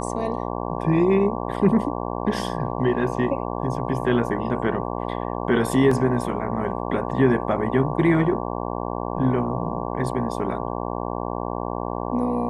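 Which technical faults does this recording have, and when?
buzz 60 Hz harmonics 19 -28 dBFS
5.91 gap 4.2 ms

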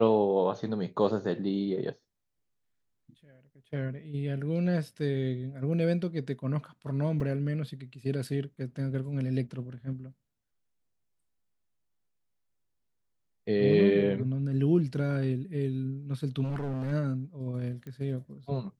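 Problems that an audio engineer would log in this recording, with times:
7.2 gap 3.1 ms
16.43–16.93 clipped -29.5 dBFS
17.87 pop -31 dBFS

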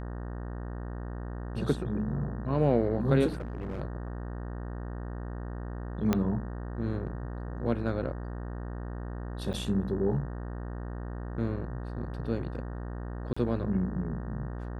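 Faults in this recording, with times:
buzz 60 Hz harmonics 31 -37 dBFS
3.27–3.8 clipped -31.5 dBFS
6.13 pop -12 dBFS
9.53–9.54 gap 8.2 ms
13.33–13.37 gap 35 ms

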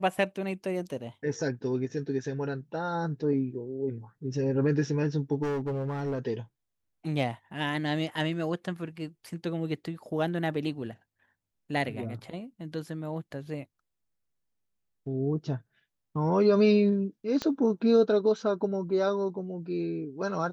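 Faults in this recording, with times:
5.42–6.19 clipped -27 dBFS
17.42 pop -17 dBFS

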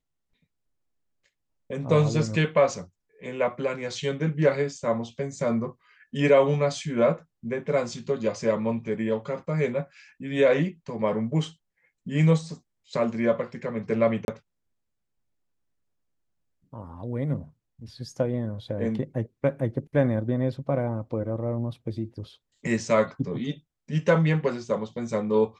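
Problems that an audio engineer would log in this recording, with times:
14.25–14.28 gap 31 ms

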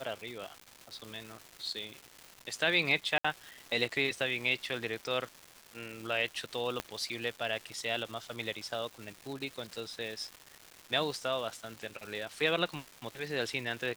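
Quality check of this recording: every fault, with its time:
crackle 570/s -40 dBFS
3.18–3.25 gap 65 ms
6.8 pop -17 dBFS

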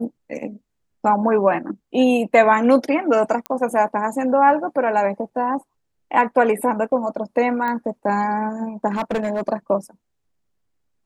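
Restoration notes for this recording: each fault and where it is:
3.46 pop -12 dBFS
7.68 pop -14 dBFS
8.87–9.49 clipped -18 dBFS

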